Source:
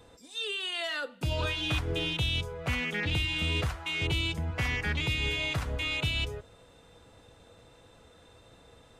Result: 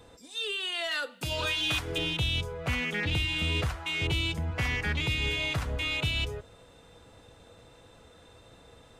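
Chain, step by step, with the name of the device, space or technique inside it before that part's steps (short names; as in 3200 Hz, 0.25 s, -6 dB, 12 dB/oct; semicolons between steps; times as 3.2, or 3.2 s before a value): 0.91–1.98 tilt +2 dB/oct; parallel distortion (in parallel at -12.5 dB: hard clip -36.5 dBFS, distortion -6 dB)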